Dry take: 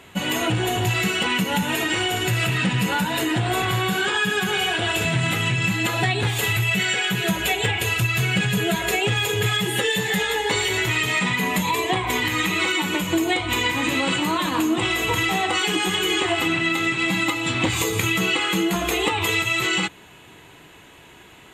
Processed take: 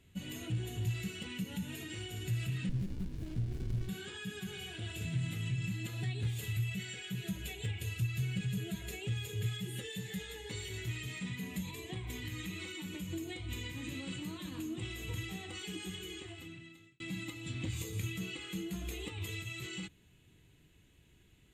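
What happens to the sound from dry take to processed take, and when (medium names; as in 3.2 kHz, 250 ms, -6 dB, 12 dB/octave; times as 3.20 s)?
2.69–3.89 s: sliding maximum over 65 samples
15.84–17.00 s: fade out
whole clip: amplifier tone stack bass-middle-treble 10-0-1; trim +1.5 dB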